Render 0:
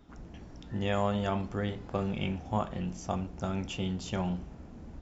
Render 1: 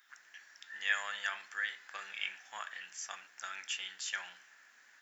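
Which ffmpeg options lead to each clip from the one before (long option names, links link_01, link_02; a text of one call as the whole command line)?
ffmpeg -i in.wav -af "highpass=frequency=1700:width_type=q:width=6.4,aemphasis=mode=production:type=75fm,volume=-5dB" out.wav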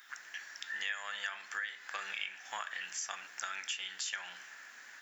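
ffmpeg -i in.wav -af "acompressor=threshold=-46dB:ratio=5,volume=9.5dB" out.wav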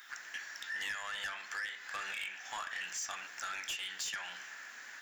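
ffmpeg -i in.wav -af "asoftclip=type=tanh:threshold=-37dB,volume=3.5dB" out.wav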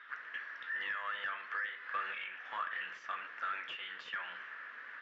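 ffmpeg -i in.wav -af "highpass=170,equalizer=frequency=200:width_type=q:width=4:gain=-4,equalizer=frequency=320:width_type=q:width=4:gain=-3,equalizer=frequency=480:width_type=q:width=4:gain=4,equalizer=frequency=780:width_type=q:width=4:gain=-9,equalizer=frequency=1200:width_type=q:width=4:gain=6,equalizer=frequency=2400:width_type=q:width=4:gain=-4,lowpass=frequency=2700:width=0.5412,lowpass=frequency=2700:width=1.3066,volume=1.5dB" out.wav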